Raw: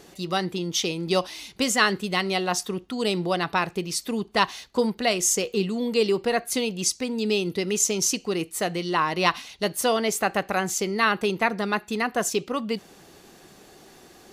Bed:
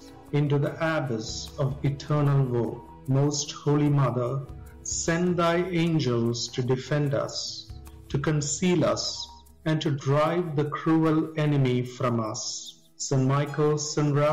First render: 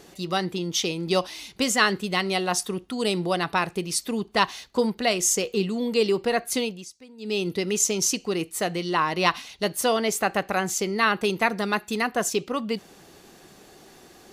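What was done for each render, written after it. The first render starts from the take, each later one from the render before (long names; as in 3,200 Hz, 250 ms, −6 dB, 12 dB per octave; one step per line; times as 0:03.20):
0:02.31–0:03.99: parametric band 9,700 Hz +6.5 dB 0.41 octaves
0:06.62–0:07.42: duck −19 dB, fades 0.24 s
0:11.24–0:12.09: high-shelf EQ 4,900 Hz +6 dB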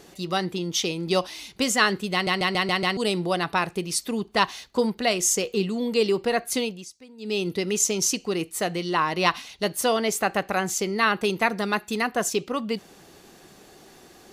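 0:02.13: stutter in place 0.14 s, 6 plays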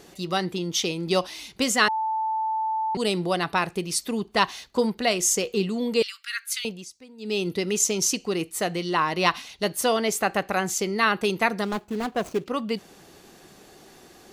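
0:01.88–0:02.95: beep over 880 Hz −23 dBFS
0:06.02–0:06.65: Butterworth high-pass 1,300 Hz 72 dB per octave
0:11.64–0:12.46: running median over 25 samples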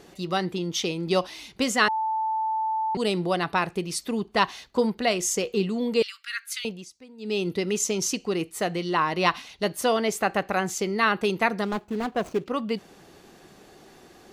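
high-shelf EQ 4,500 Hz −6.5 dB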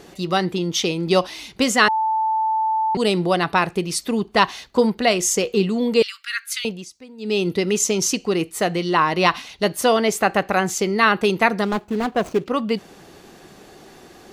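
level +6 dB
brickwall limiter −1 dBFS, peak gain reduction 2 dB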